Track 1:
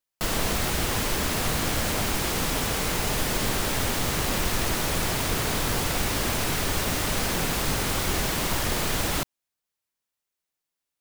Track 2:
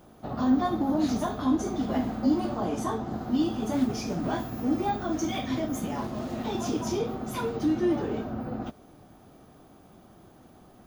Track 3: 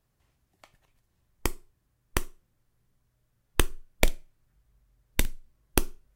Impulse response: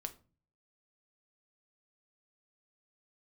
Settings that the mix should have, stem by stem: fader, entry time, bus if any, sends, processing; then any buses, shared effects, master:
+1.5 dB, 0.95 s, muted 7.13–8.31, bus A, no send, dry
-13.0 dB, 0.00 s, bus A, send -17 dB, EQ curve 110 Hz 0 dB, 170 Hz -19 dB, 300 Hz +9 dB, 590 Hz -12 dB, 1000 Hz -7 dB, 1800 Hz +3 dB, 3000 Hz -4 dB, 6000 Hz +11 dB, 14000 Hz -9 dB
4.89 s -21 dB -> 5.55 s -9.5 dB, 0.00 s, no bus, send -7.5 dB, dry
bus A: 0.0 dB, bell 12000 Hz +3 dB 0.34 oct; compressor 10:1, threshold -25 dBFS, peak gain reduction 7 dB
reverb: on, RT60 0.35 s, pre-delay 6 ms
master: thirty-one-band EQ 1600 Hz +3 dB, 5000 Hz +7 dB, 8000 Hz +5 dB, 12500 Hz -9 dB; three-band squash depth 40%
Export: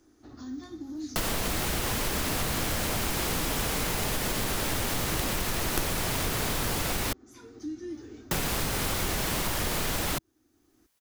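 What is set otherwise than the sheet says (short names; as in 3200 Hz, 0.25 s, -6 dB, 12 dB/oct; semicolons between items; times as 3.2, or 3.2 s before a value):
stem 2 -13.0 dB -> -21.5 dB; master: missing thirty-one-band EQ 1600 Hz +3 dB, 5000 Hz +7 dB, 8000 Hz +5 dB, 12500 Hz -9 dB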